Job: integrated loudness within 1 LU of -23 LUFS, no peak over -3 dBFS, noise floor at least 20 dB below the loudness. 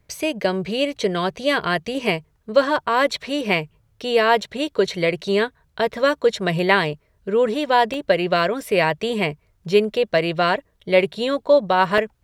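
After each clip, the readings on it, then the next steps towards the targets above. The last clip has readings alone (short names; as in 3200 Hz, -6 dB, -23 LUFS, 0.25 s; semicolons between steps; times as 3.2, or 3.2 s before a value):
dropouts 2; longest dropout 1.4 ms; loudness -20.5 LUFS; peak -1.5 dBFS; loudness target -23.0 LUFS
-> interpolate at 7.94/11.98, 1.4 ms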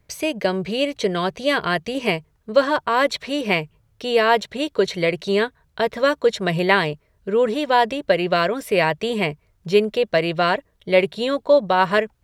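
dropouts 0; loudness -20.5 LUFS; peak -1.5 dBFS; loudness target -23.0 LUFS
-> gain -2.5 dB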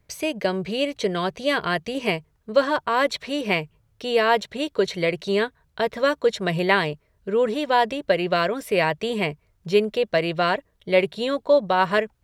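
loudness -23.0 LUFS; peak -4.0 dBFS; noise floor -66 dBFS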